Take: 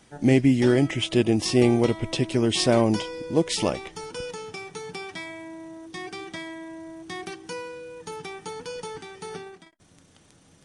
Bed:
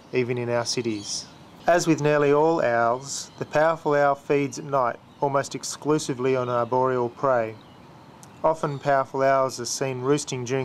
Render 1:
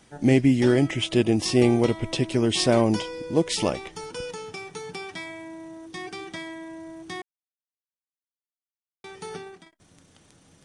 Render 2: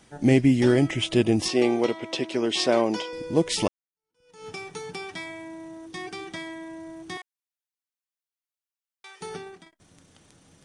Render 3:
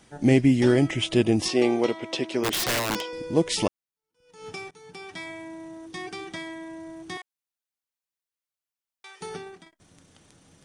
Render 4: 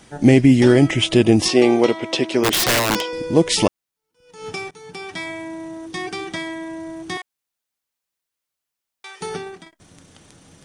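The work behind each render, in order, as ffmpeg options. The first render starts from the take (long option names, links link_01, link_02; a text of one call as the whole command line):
ffmpeg -i in.wav -filter_complex "[0:a]asplit=3[link_01][link_02][link_03];[link_01]atrim=end=7.22,asetpts=PTS-STARTPTS,afade=type=out:start_time=7.216:duration=0.004:curve=hsin[link_04];[link_02]atrim=start=7.22:end=9.04,asetpts=PTS-STARTPTS,volume=0[link_05];[link_03]atrim=start=9.04,asetpts=PTS-STARTPTS,afade=type=in:duration=0.004:curve=hsin[link_06];[link_04][link_05][link_06]concat=n=3:v=0:a=1" out.wav
ffmpeg -i in.wav -filter_complex "[0:a]asettb=1/sr,asplit=3[link_01][link_02][link_03];[link_01]atrim=end=1.484[link_04];[link_02]atrim=start=1.48:end=3.13,asetpts=PTS-STARTPTS,afade=type=in:duration=0.004:curve=qsin,afade=type=out:start_time=1.646:duration=0.004:curve=qsin,highpass=300,lowpass=6400[link_05];[link_03]atrim=start=3.126[link_06];[link_04][link_05]acrossfade=duration=0.004:curve1=hsin:curve2=qsin[link_07];[link_07][link_06]acrossfade=duration=0.004:curve1=qsin:curve2=hsin,asettb=1/sr,asplit=3[link_08][link_09][link_10];[link_08]atrim=end=7.174[link_11];[link_09]atrim=start=7.17:end=9.21,asetpts=PTS-STARTPTS,afade=type=in:duration=0.004:curve=qsin,afade=type=out:start_time=2.036:duration=0.004:curve=qsin,highpass=980[link_12];[link_10]atrim=start=9.206[link_13];[link_11][link_12]acrossfade=duration=0.004:curve1=hsin:curve2=qsin[link_14];[link_14][link_13]acrossfade=duration=0.004:curve1=qsin:curve2=hsin,asplit=2[link_15][link_16];[link_15]atrim=end=3.68,asetpts=PTS-STARTPTS,afade=type=out:start_time=3.676:duration=0.004:curve=hsin[link_17];[link_16]atrim=start=3.68,asetpts=PTS-STARTPTS,afade=type=in:duration=0.79:curve=exp[link_18];[link_17][link_18]concat=n=2:v=0:a=1" out.wav
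ffmpeg -i in.wav -filter_complex "[0:a]asplit=3[link_01][link_02][link_03];[link_01]afade=type=out:start_time=2.43:duration=0.02[link_04];[link_02]aeval=exprs='(mod(9.44*val(0)+1,2)-1)/9.44':channel_layout=same,afade=type=in:start_time=2.43:duration=0.02,afade=type=out:start_time=3.14:duration=0.02[link_05];[link_03]afade=type=in:start_time=3.14:duration=0.02[link_06];[link_04][link_05][link_06]amix=inputs=3:normalize=0,asplit=2[link_07][link_08];[link_07]atrim=end=4.71,asetpts=PTS-STARTPTS,afade=type=out:start_time=4.706:duration=0.004:curve=hsin:silence=0.0841395[link_09];[link_08]atrim=start=4.71,asetpts=PTS-STARTPTS,afade=type=in:duration=0.58:silence=0.0841395[link_10];[link_09][link_10]concat=n=2:v=0:a=1" out.wav
ffmpeg -i in.wav -af "volume=8dB,alimiter=limit=-3dB:level=0:latency=1" out.wav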